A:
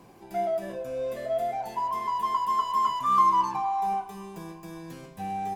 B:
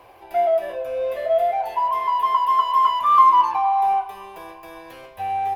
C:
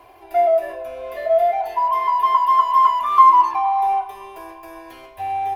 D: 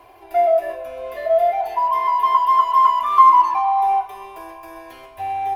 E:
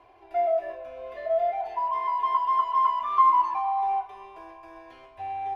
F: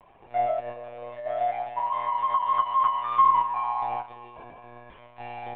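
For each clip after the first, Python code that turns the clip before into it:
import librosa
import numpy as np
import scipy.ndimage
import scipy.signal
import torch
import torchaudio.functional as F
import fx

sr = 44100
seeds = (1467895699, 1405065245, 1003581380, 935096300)

y1 = fx.curve_eq(x, sr, hz=(100.0, 170.0, 590.0, 1500.0, 2800.0, 7600.0, 11000.0), db=(0, -21, 7, 4, 7, -10, 1))
y1 = y1 * librosa.db_to_amplitude(2.5)
y2 = y1 + 0.62 * np.pad(y1, (int(2.9 * sr / 1000.0), 0))[:len(y1)]
y2 = y2 * librosa.db_to_amplitude(-1.0)
y3 = y2 + 10.0 ** (-13.0 / 20.0) * np.pad(y2, (int(129 * sr / 1000.0), 0))[:len(y2)]
y4 = fx.air_absorb(y3, sr, metres=100.0)
y4 = y4 * librosa.db_to_amplitude(-8.0)
y5 = fx.lpc_monotone(y4, sr, seeds[0], pitch_hz=120.0, order=16)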